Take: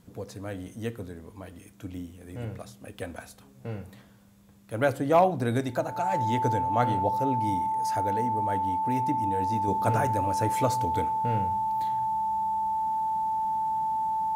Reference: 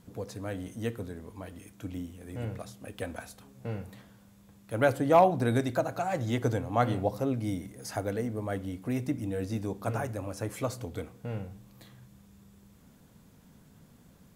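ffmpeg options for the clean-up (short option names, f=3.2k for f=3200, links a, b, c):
-af "bandreject=f=880:w=30,asetnsamples=n=441:p=0,asendcmd='9.68 volume volume -5.5dB',volume=0dB"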